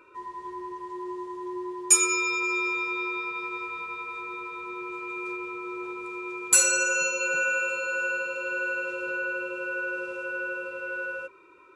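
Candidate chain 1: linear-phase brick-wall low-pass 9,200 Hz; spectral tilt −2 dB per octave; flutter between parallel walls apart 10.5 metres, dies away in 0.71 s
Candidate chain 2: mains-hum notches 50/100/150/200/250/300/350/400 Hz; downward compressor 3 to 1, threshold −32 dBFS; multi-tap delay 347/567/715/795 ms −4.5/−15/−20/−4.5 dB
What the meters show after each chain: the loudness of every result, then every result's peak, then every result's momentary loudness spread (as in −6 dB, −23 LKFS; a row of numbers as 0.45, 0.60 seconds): −30.0, −31.0 LKFS; −10.5, −14.0 dBFS; 13, 11 LU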